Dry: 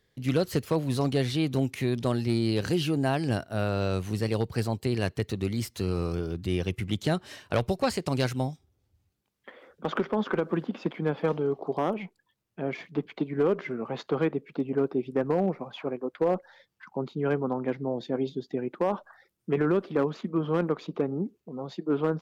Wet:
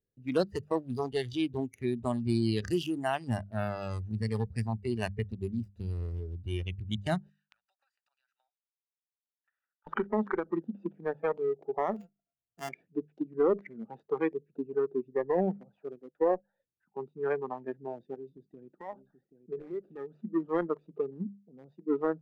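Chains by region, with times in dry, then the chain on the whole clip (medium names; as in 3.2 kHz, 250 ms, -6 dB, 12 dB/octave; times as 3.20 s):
7.29–9.87 s: steep high-pass 1.1 kHz + compression 8:1, threshold -45 dBFS + transient shaper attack +5 dB, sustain -3 dB
11.96–12.69 s: sorted samples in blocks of 64 samples + treble shelf 7.8 kHz -7 dB
18.14–20.14 s: compression 2:1, threshold -32 dBFS + delay 781 ms -11 dB
whole clip: local Wiener filter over 41 samples; spectral noise reduction 15 dB; hum notches 50/100/150/200 Hz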